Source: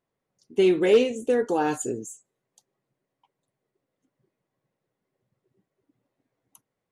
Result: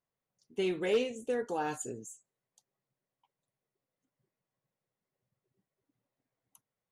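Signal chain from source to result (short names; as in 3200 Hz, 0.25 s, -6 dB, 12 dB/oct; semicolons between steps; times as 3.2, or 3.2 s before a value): bell 330 Hz -6 dB 1 oct; gain -7.5 dB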